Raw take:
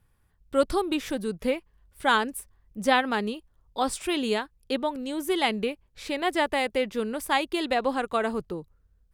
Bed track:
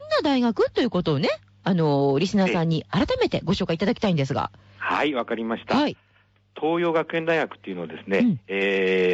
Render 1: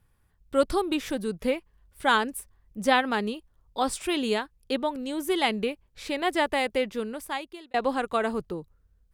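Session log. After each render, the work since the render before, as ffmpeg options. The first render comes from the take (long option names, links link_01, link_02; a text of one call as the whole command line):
ffmpeg -i in.wav -filter_complex "[0:a]asplit=2[link_01][link_02];[link_01]atrim=end=7.74,asetpts=PTS-STARTPTS,afade=type=out:start_time=6.78:duration=0.96[link_03];[link_02]atrim=start=7.74,asetpts=PTS-STARTPTS,afade=type=in:duration=0.004:curve=hsin[link_04];[link_03][link_04]concat=n=2:v=0:a=1" out.wav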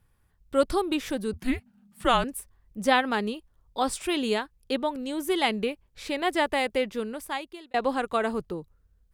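ffmpeg -i in.wav -filter_complex "[0:a]asettb=1/sr,asplit=3[link_01][link_02][link_03];[link_01]atrim=end=1.334[link_04];[link_02]atrim=start=1.33:end=2.24,asetpts=PTS-STARTPTS,afade=type=in:duration=0.004:curve=qsin,afade=type=out:start_time=0.906:duration=0.004:curve=qsin,afreqshift=-250[link_05];[link_03]atrim=start=2.236[link_06];[link_04][link_05]acrossfade=duration=0.004:curve1=hsin:curve2=qsin[link_07];[link_07][link_06]acrossfade=duration=0.004:curve1=qsin:curve2=hsin" out.wav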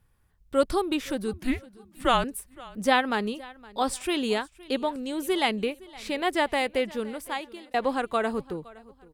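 ffmpeg -i in.wav -af "aecho=1:1:515|1030:0.0841|0.0278" out.wav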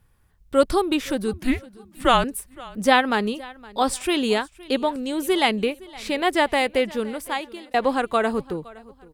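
ffmpeg -i in.wav -af "volume=5dB" out.wav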